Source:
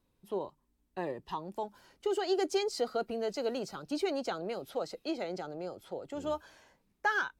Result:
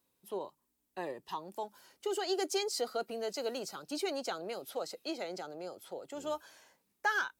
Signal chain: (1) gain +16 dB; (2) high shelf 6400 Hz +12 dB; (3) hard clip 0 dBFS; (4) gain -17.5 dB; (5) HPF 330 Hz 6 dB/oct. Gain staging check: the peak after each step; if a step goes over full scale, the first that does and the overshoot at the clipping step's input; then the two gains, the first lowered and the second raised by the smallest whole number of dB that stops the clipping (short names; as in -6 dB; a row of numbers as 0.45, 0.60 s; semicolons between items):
-2.5, -1.5, -1.5, -19.0, -19.5 dBFS; no overload